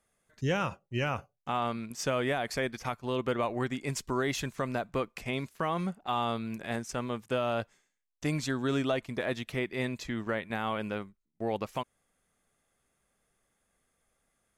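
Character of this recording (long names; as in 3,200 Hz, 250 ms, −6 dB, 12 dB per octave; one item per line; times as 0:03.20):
background noise floor −80 dBFS
spectral slope −5.0 dB per octave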